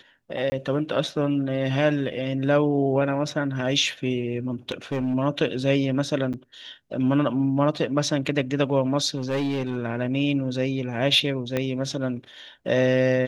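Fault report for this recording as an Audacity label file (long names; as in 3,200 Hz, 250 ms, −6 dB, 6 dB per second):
0.500000	0.520000	drop-out 20 ms
4.690000	5.150000	clipping −21 dBFS
6.330000	6.340000	drop-out 7.7 ms
9.160000	9.770000	clipping −21.5 dBFS
11.570000	11.570000	click −12 dBFS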